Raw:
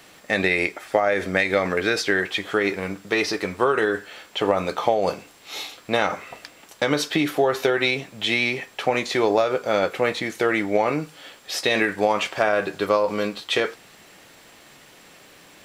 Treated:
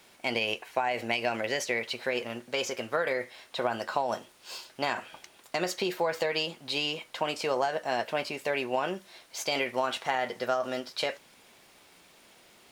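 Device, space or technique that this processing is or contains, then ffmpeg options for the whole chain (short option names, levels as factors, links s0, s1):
nightcore: -af "asetrate=54243,aresample=44100,volume=0.376"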